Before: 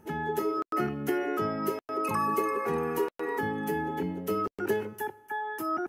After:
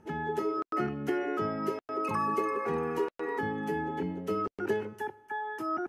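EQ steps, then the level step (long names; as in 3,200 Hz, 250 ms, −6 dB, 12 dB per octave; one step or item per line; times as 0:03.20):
high-frequency loss of the air 62 metres
−1.5 dB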